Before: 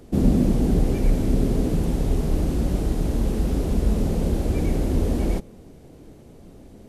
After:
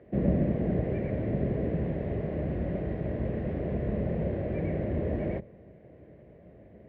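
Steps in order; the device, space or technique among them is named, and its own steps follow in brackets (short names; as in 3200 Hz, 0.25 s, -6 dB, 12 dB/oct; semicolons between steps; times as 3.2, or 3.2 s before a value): sub-octave bass pedal (octaver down 2 oct, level +1 dB; speaker cabinet 72–2300 Hz, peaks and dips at 85 Hz -5 dB, 260 Hz -7 dB, 600 Hz +9 dB, 860 Hz -7 dB, 1300 Hz -8 dB, 1900 Hz +8 dB); gain -5.5 dB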